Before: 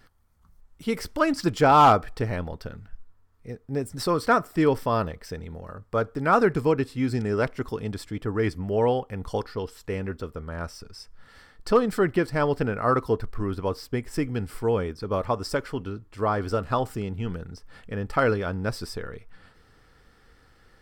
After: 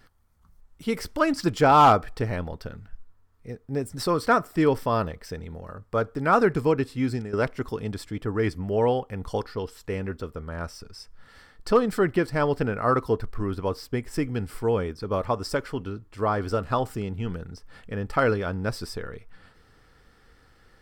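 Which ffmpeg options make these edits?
-filter_complex "[0:a]asplit=2[s0][s1];[s0]atrim=end=7.33,asetpts=PTS-STARTPTS,afade=t=out:st=7.08:d=0.25:silence=0.223872[s2];[s1]atrim=start=7.33,asetpts=PTS-STARTPTS,afade=t=in:d=0.004:c=hsin:silence=0.223872[s3];[s2][s3]concat=n=2:v=0:a=1"

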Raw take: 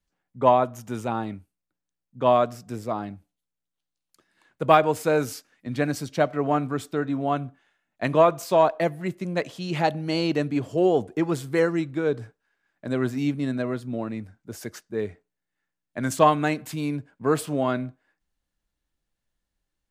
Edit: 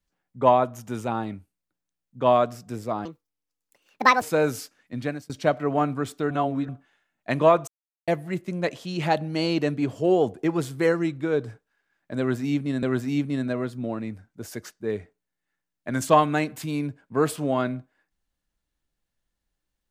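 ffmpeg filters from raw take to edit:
-filter_complex "[0:a]asplit=9[s0][s1][s2][s3][s4][s5][s6][s7][s8];[s0]atrim=end=3.054[s9];[s1]atrim=start=3.05:end=4.95,asetpts=PTS-STARTPTS,asetrate=71883,aresample=44100[s10];[s2]atrim=start=4.946:end=6.03,asetpts=PTS-STARTPTS,afade=t=out:st=0.734:d=0.35[s11];[s3]atrim=start=6.03:end=7.042,asetpts=PTS-STARTPTS,afade=t=in:d=0.004:c=hsin[s12];[s4]atrim=start=7.038:end=7.422,asetpts=PTS-STARTPTS,areverse[s13];[s5]atrim=start=7.418:end=8.41,asetpts=PTS-STARTPTS,afade=t=out:st=0.988:d=0.004:c=hsin[s14];[s6]atrim=start=8.41:end=8.81,asetpts=PTS-STARTPTS,volume=0[s15];[s7]atrim=start=8.81:end=13.562,asetpts=PTS-STARTPTS,afade=t=in:d=0.004:c=hsin[s16];[s8]atrim=start=12.918[s17];[s9][s10]acrossfade=d=0.004:c1=hsin:c2=hsin[s18];[s11][s12]concat=n=2:v=0:a=1[s19];[s18][s19]acrossfade=d=0.004:c1=hsin:c2=hsin[s20];[s20][s13]acrossfade=d=0.004:c1=hsin:c2=hsin[s21];[s14][s15][s16]concat=n=3:v=0:a=1[s22];[s21][s22]acrossfade=d=0.004:c1=hsin:c2=hsin[s23];[s23][s17]acrossfade=d=0.004:c1=hsin:c2=hsin"

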